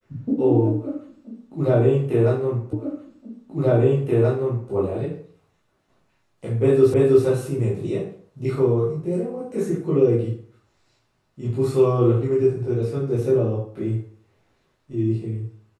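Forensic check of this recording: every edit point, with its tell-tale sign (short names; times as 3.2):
2.73 repeat of the last 1.98 s
6.94 repeat of the last 0.32 s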